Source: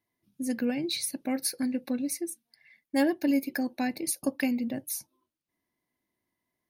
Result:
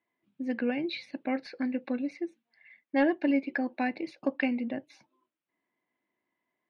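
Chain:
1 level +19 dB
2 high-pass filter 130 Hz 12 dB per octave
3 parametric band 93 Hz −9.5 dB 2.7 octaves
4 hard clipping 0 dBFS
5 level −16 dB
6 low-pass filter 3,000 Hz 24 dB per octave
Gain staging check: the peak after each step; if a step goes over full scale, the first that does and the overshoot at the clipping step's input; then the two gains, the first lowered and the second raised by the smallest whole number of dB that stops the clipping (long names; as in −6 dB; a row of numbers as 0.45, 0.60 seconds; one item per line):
+4.5, +5.0, +4.0, 0.0, −16.0, −15.0 dBFS
step 1, 4.0 dB
step 1 +15 dB, step 5 −12 dB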